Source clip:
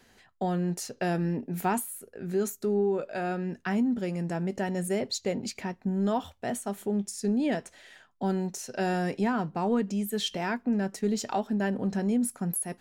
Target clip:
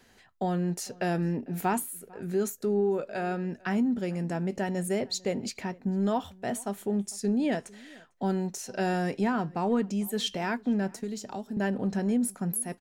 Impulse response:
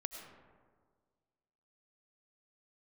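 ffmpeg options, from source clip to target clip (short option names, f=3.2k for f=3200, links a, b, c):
-filter_complex "[0:a]asplit=2[a][b];[b]adelay=449,volume=-24dB,highshelf=f=4k:g=-10.1[c];[a][c]amix=inputs=2:normalize=0,asettb=1/sr,asplit=3[d][e][f];[d]atrim=end=10.914[g];[e]atrim=start=10.91:end=11.57,asetpts=PTS-STARTPTS,afade=t=in:d=0.004:c=qsin,afade=t=out:st=0.656:d=0.004:c=qsin,acrossover=split=350|1000|4800[h][i][j][k];[h]acompressor=threshold=-36dB:ratio=4[l];[i]acompressor=threshold=-41dB:ratio=4[m];[j]acompressor=threshold=-54dB:ratio=4[n];[k]acompressor=threshold=-42dB:ratio=4[o];[l][m][n][o]amix=inputs=4:normalize=0[p];[f]atrim=start=11.566[q];[g][p]acrossfade=d=0.004:c1=hsin:c2=qsin[r];[r][q]acrossfade=d=0.004:c1=qsin:c2=hsin"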